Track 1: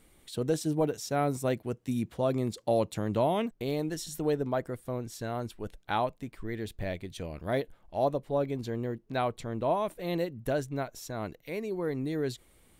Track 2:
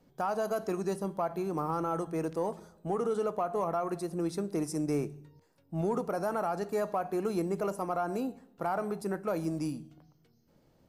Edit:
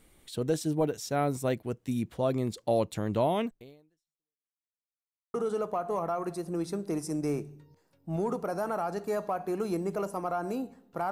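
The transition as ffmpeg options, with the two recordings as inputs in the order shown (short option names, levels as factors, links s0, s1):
-filter_complex "[0:a]apad=whole_dur=11.11,atrim=end=11.11,asplit=2[s0][s1];[s0]atrim=end=4.59,asetpts=PTS-STARTPTS,afade=t=out:st=3.47:d=1.12:c=exp[s2];[s1]atrim=start=4.59:end=5.34,asetpts=PTS-STARTPTS,volume=0[s3];[1:a]atrim=start=2.99:end=8.76,asetpts=PTS-STARTPTS,afade=t=in:d=0.004:c=hsin[s4];[s2][s3][s4]concat=n=3:v=0:a=1"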